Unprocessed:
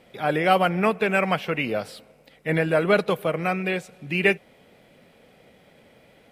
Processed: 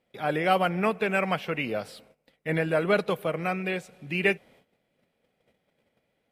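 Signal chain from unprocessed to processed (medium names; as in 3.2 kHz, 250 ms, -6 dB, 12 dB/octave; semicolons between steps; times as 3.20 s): gate -51 dBFS, range -16 dB; trim -4 dB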